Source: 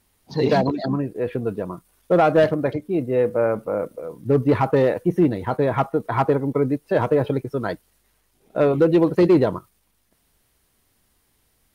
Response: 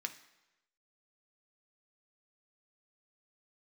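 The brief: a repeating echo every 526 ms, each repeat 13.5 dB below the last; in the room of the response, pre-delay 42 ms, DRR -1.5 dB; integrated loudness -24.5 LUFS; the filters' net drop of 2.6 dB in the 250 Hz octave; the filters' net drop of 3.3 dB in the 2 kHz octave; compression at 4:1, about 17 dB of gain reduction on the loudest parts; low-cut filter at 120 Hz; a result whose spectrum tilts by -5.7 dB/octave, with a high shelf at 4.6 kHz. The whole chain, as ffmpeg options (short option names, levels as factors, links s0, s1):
-filter_complex "[0:a]highpass=120,equalizer=f=250:t=o:g=-3.5,equalizer=f=2000:t=o:g=-5.5,highshelf=f=4600:g=7,acompressor=threshold=0.0178:ratio=4,aecho=1:1:526|1052:0.211|0.0444,asplit=2[s0][s1];[1:a]atrim=start_sample=2205,adelay=42[s2];[s1][s2]afir=irnorm=-1:irlink=0,volume=1.26[s3];[s0][s3]amix=inputs=2:normalize=0,volume=3.35"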